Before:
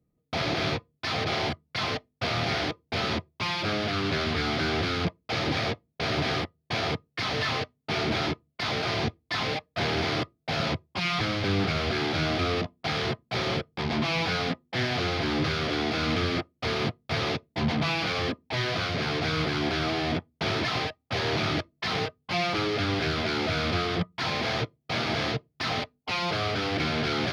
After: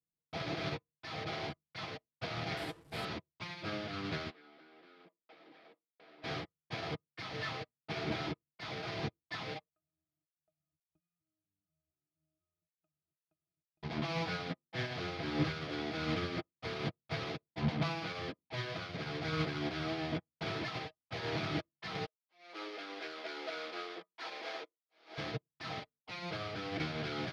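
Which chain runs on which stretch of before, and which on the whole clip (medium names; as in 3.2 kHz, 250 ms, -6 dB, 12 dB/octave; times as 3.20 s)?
2.57–3.05 s: one-bit delta coder 64 kbps, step -30.5 dBFS + peaking EQ 6.4 kHz -5.5 dB 0.27 oct + doubling 18 ms -12 dB
4.30–6.24 s: high-pass 250 Hz 24 dB/octave + distance through air 180 m + compression, threshold -32 dBFS
9.69–13.83 s: inverted gate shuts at -31 dBFS, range -37 dB + bass shelf 190 Hz +7.5 dB + pitch-class resonator D#, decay 0.1 s
22.06–25.18 s: slow attack 342 ms + high-pass 340 Hz 24 dB/octave
whole clip: treble shelf 4.5 kHz -5 dB; comb 6.2 ms, depth 37%; upward expansion 2.5:1, over -38 dBFS; trim -4 dB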